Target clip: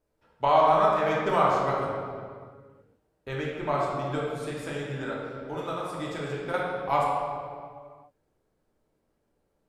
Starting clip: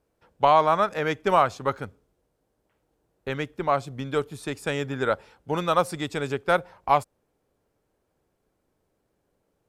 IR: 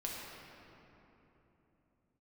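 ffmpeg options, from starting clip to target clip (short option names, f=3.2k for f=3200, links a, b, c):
-filter_complex "[0:a]asettb=1/sr,asplit=3[a][b][c];[a]atrim=end=4.164[d];[b]atrim=start=4.16:end=6.54,asetpts=PTS-STARTPTS,afade=t=in:d=0.004:c=qsin,afade=t=out:st=2.376:d=0.004:c=qsin,acompressor=threshold=-27dB:ratio=6[e];[c]atrim=start=6.536[f];[d][e]acrossfade=d=0.004:c1=hsin:c2=qsin[g];[g][f]acrossfade=d=0.004:c1=qsin:c2=hsin[h];[1:a]atrim=start_sample=2205,asetrate=83790,aresample=44100[i];[h][i]afir=irnorm=-1:irlink=0,volume=2dB"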